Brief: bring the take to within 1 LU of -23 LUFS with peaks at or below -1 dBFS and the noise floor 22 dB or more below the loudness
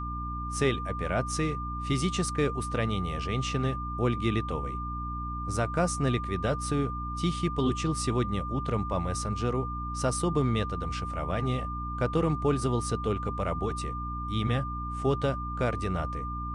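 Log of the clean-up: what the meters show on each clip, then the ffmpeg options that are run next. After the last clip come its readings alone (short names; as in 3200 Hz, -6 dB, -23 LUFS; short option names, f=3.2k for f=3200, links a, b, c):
hum 60 Hz; harmonics up to 300 Hz; hum level -33 dBFS; steady tone 1200 Hz; tone level -35 dBFS; loudness -30.0 LUFS; peak -13.5 dBFS; loudness target -23.0 LUFS
-> -af "bandreject=f=60:t=h:w=4,bandreject=f=120:t=h:w=4,bandreject=f=180:t=h:w=4,bandreject=f=240:t=h:w=4,bandreject=f=300:t=h:w=4"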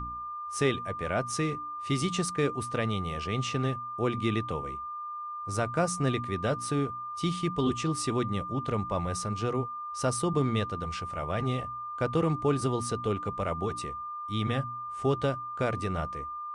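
hum none; steady tone 1200 Hz; tone level -35 dBFS
-> -af "bandreject=f=1.2k:w=30"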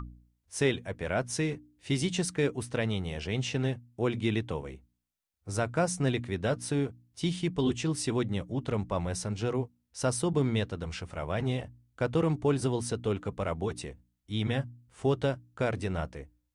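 steady tone none; loudness -31.5 LUFS; peak -15.0 dBFS; loudness target -23.0 LUFS
-> -af "volume=8.5dB"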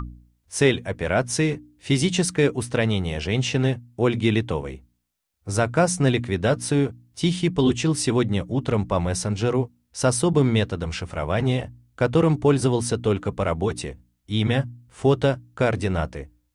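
loudness -23.0 LUFS; peak -6.5 dBFS; noise floor -70 dBFS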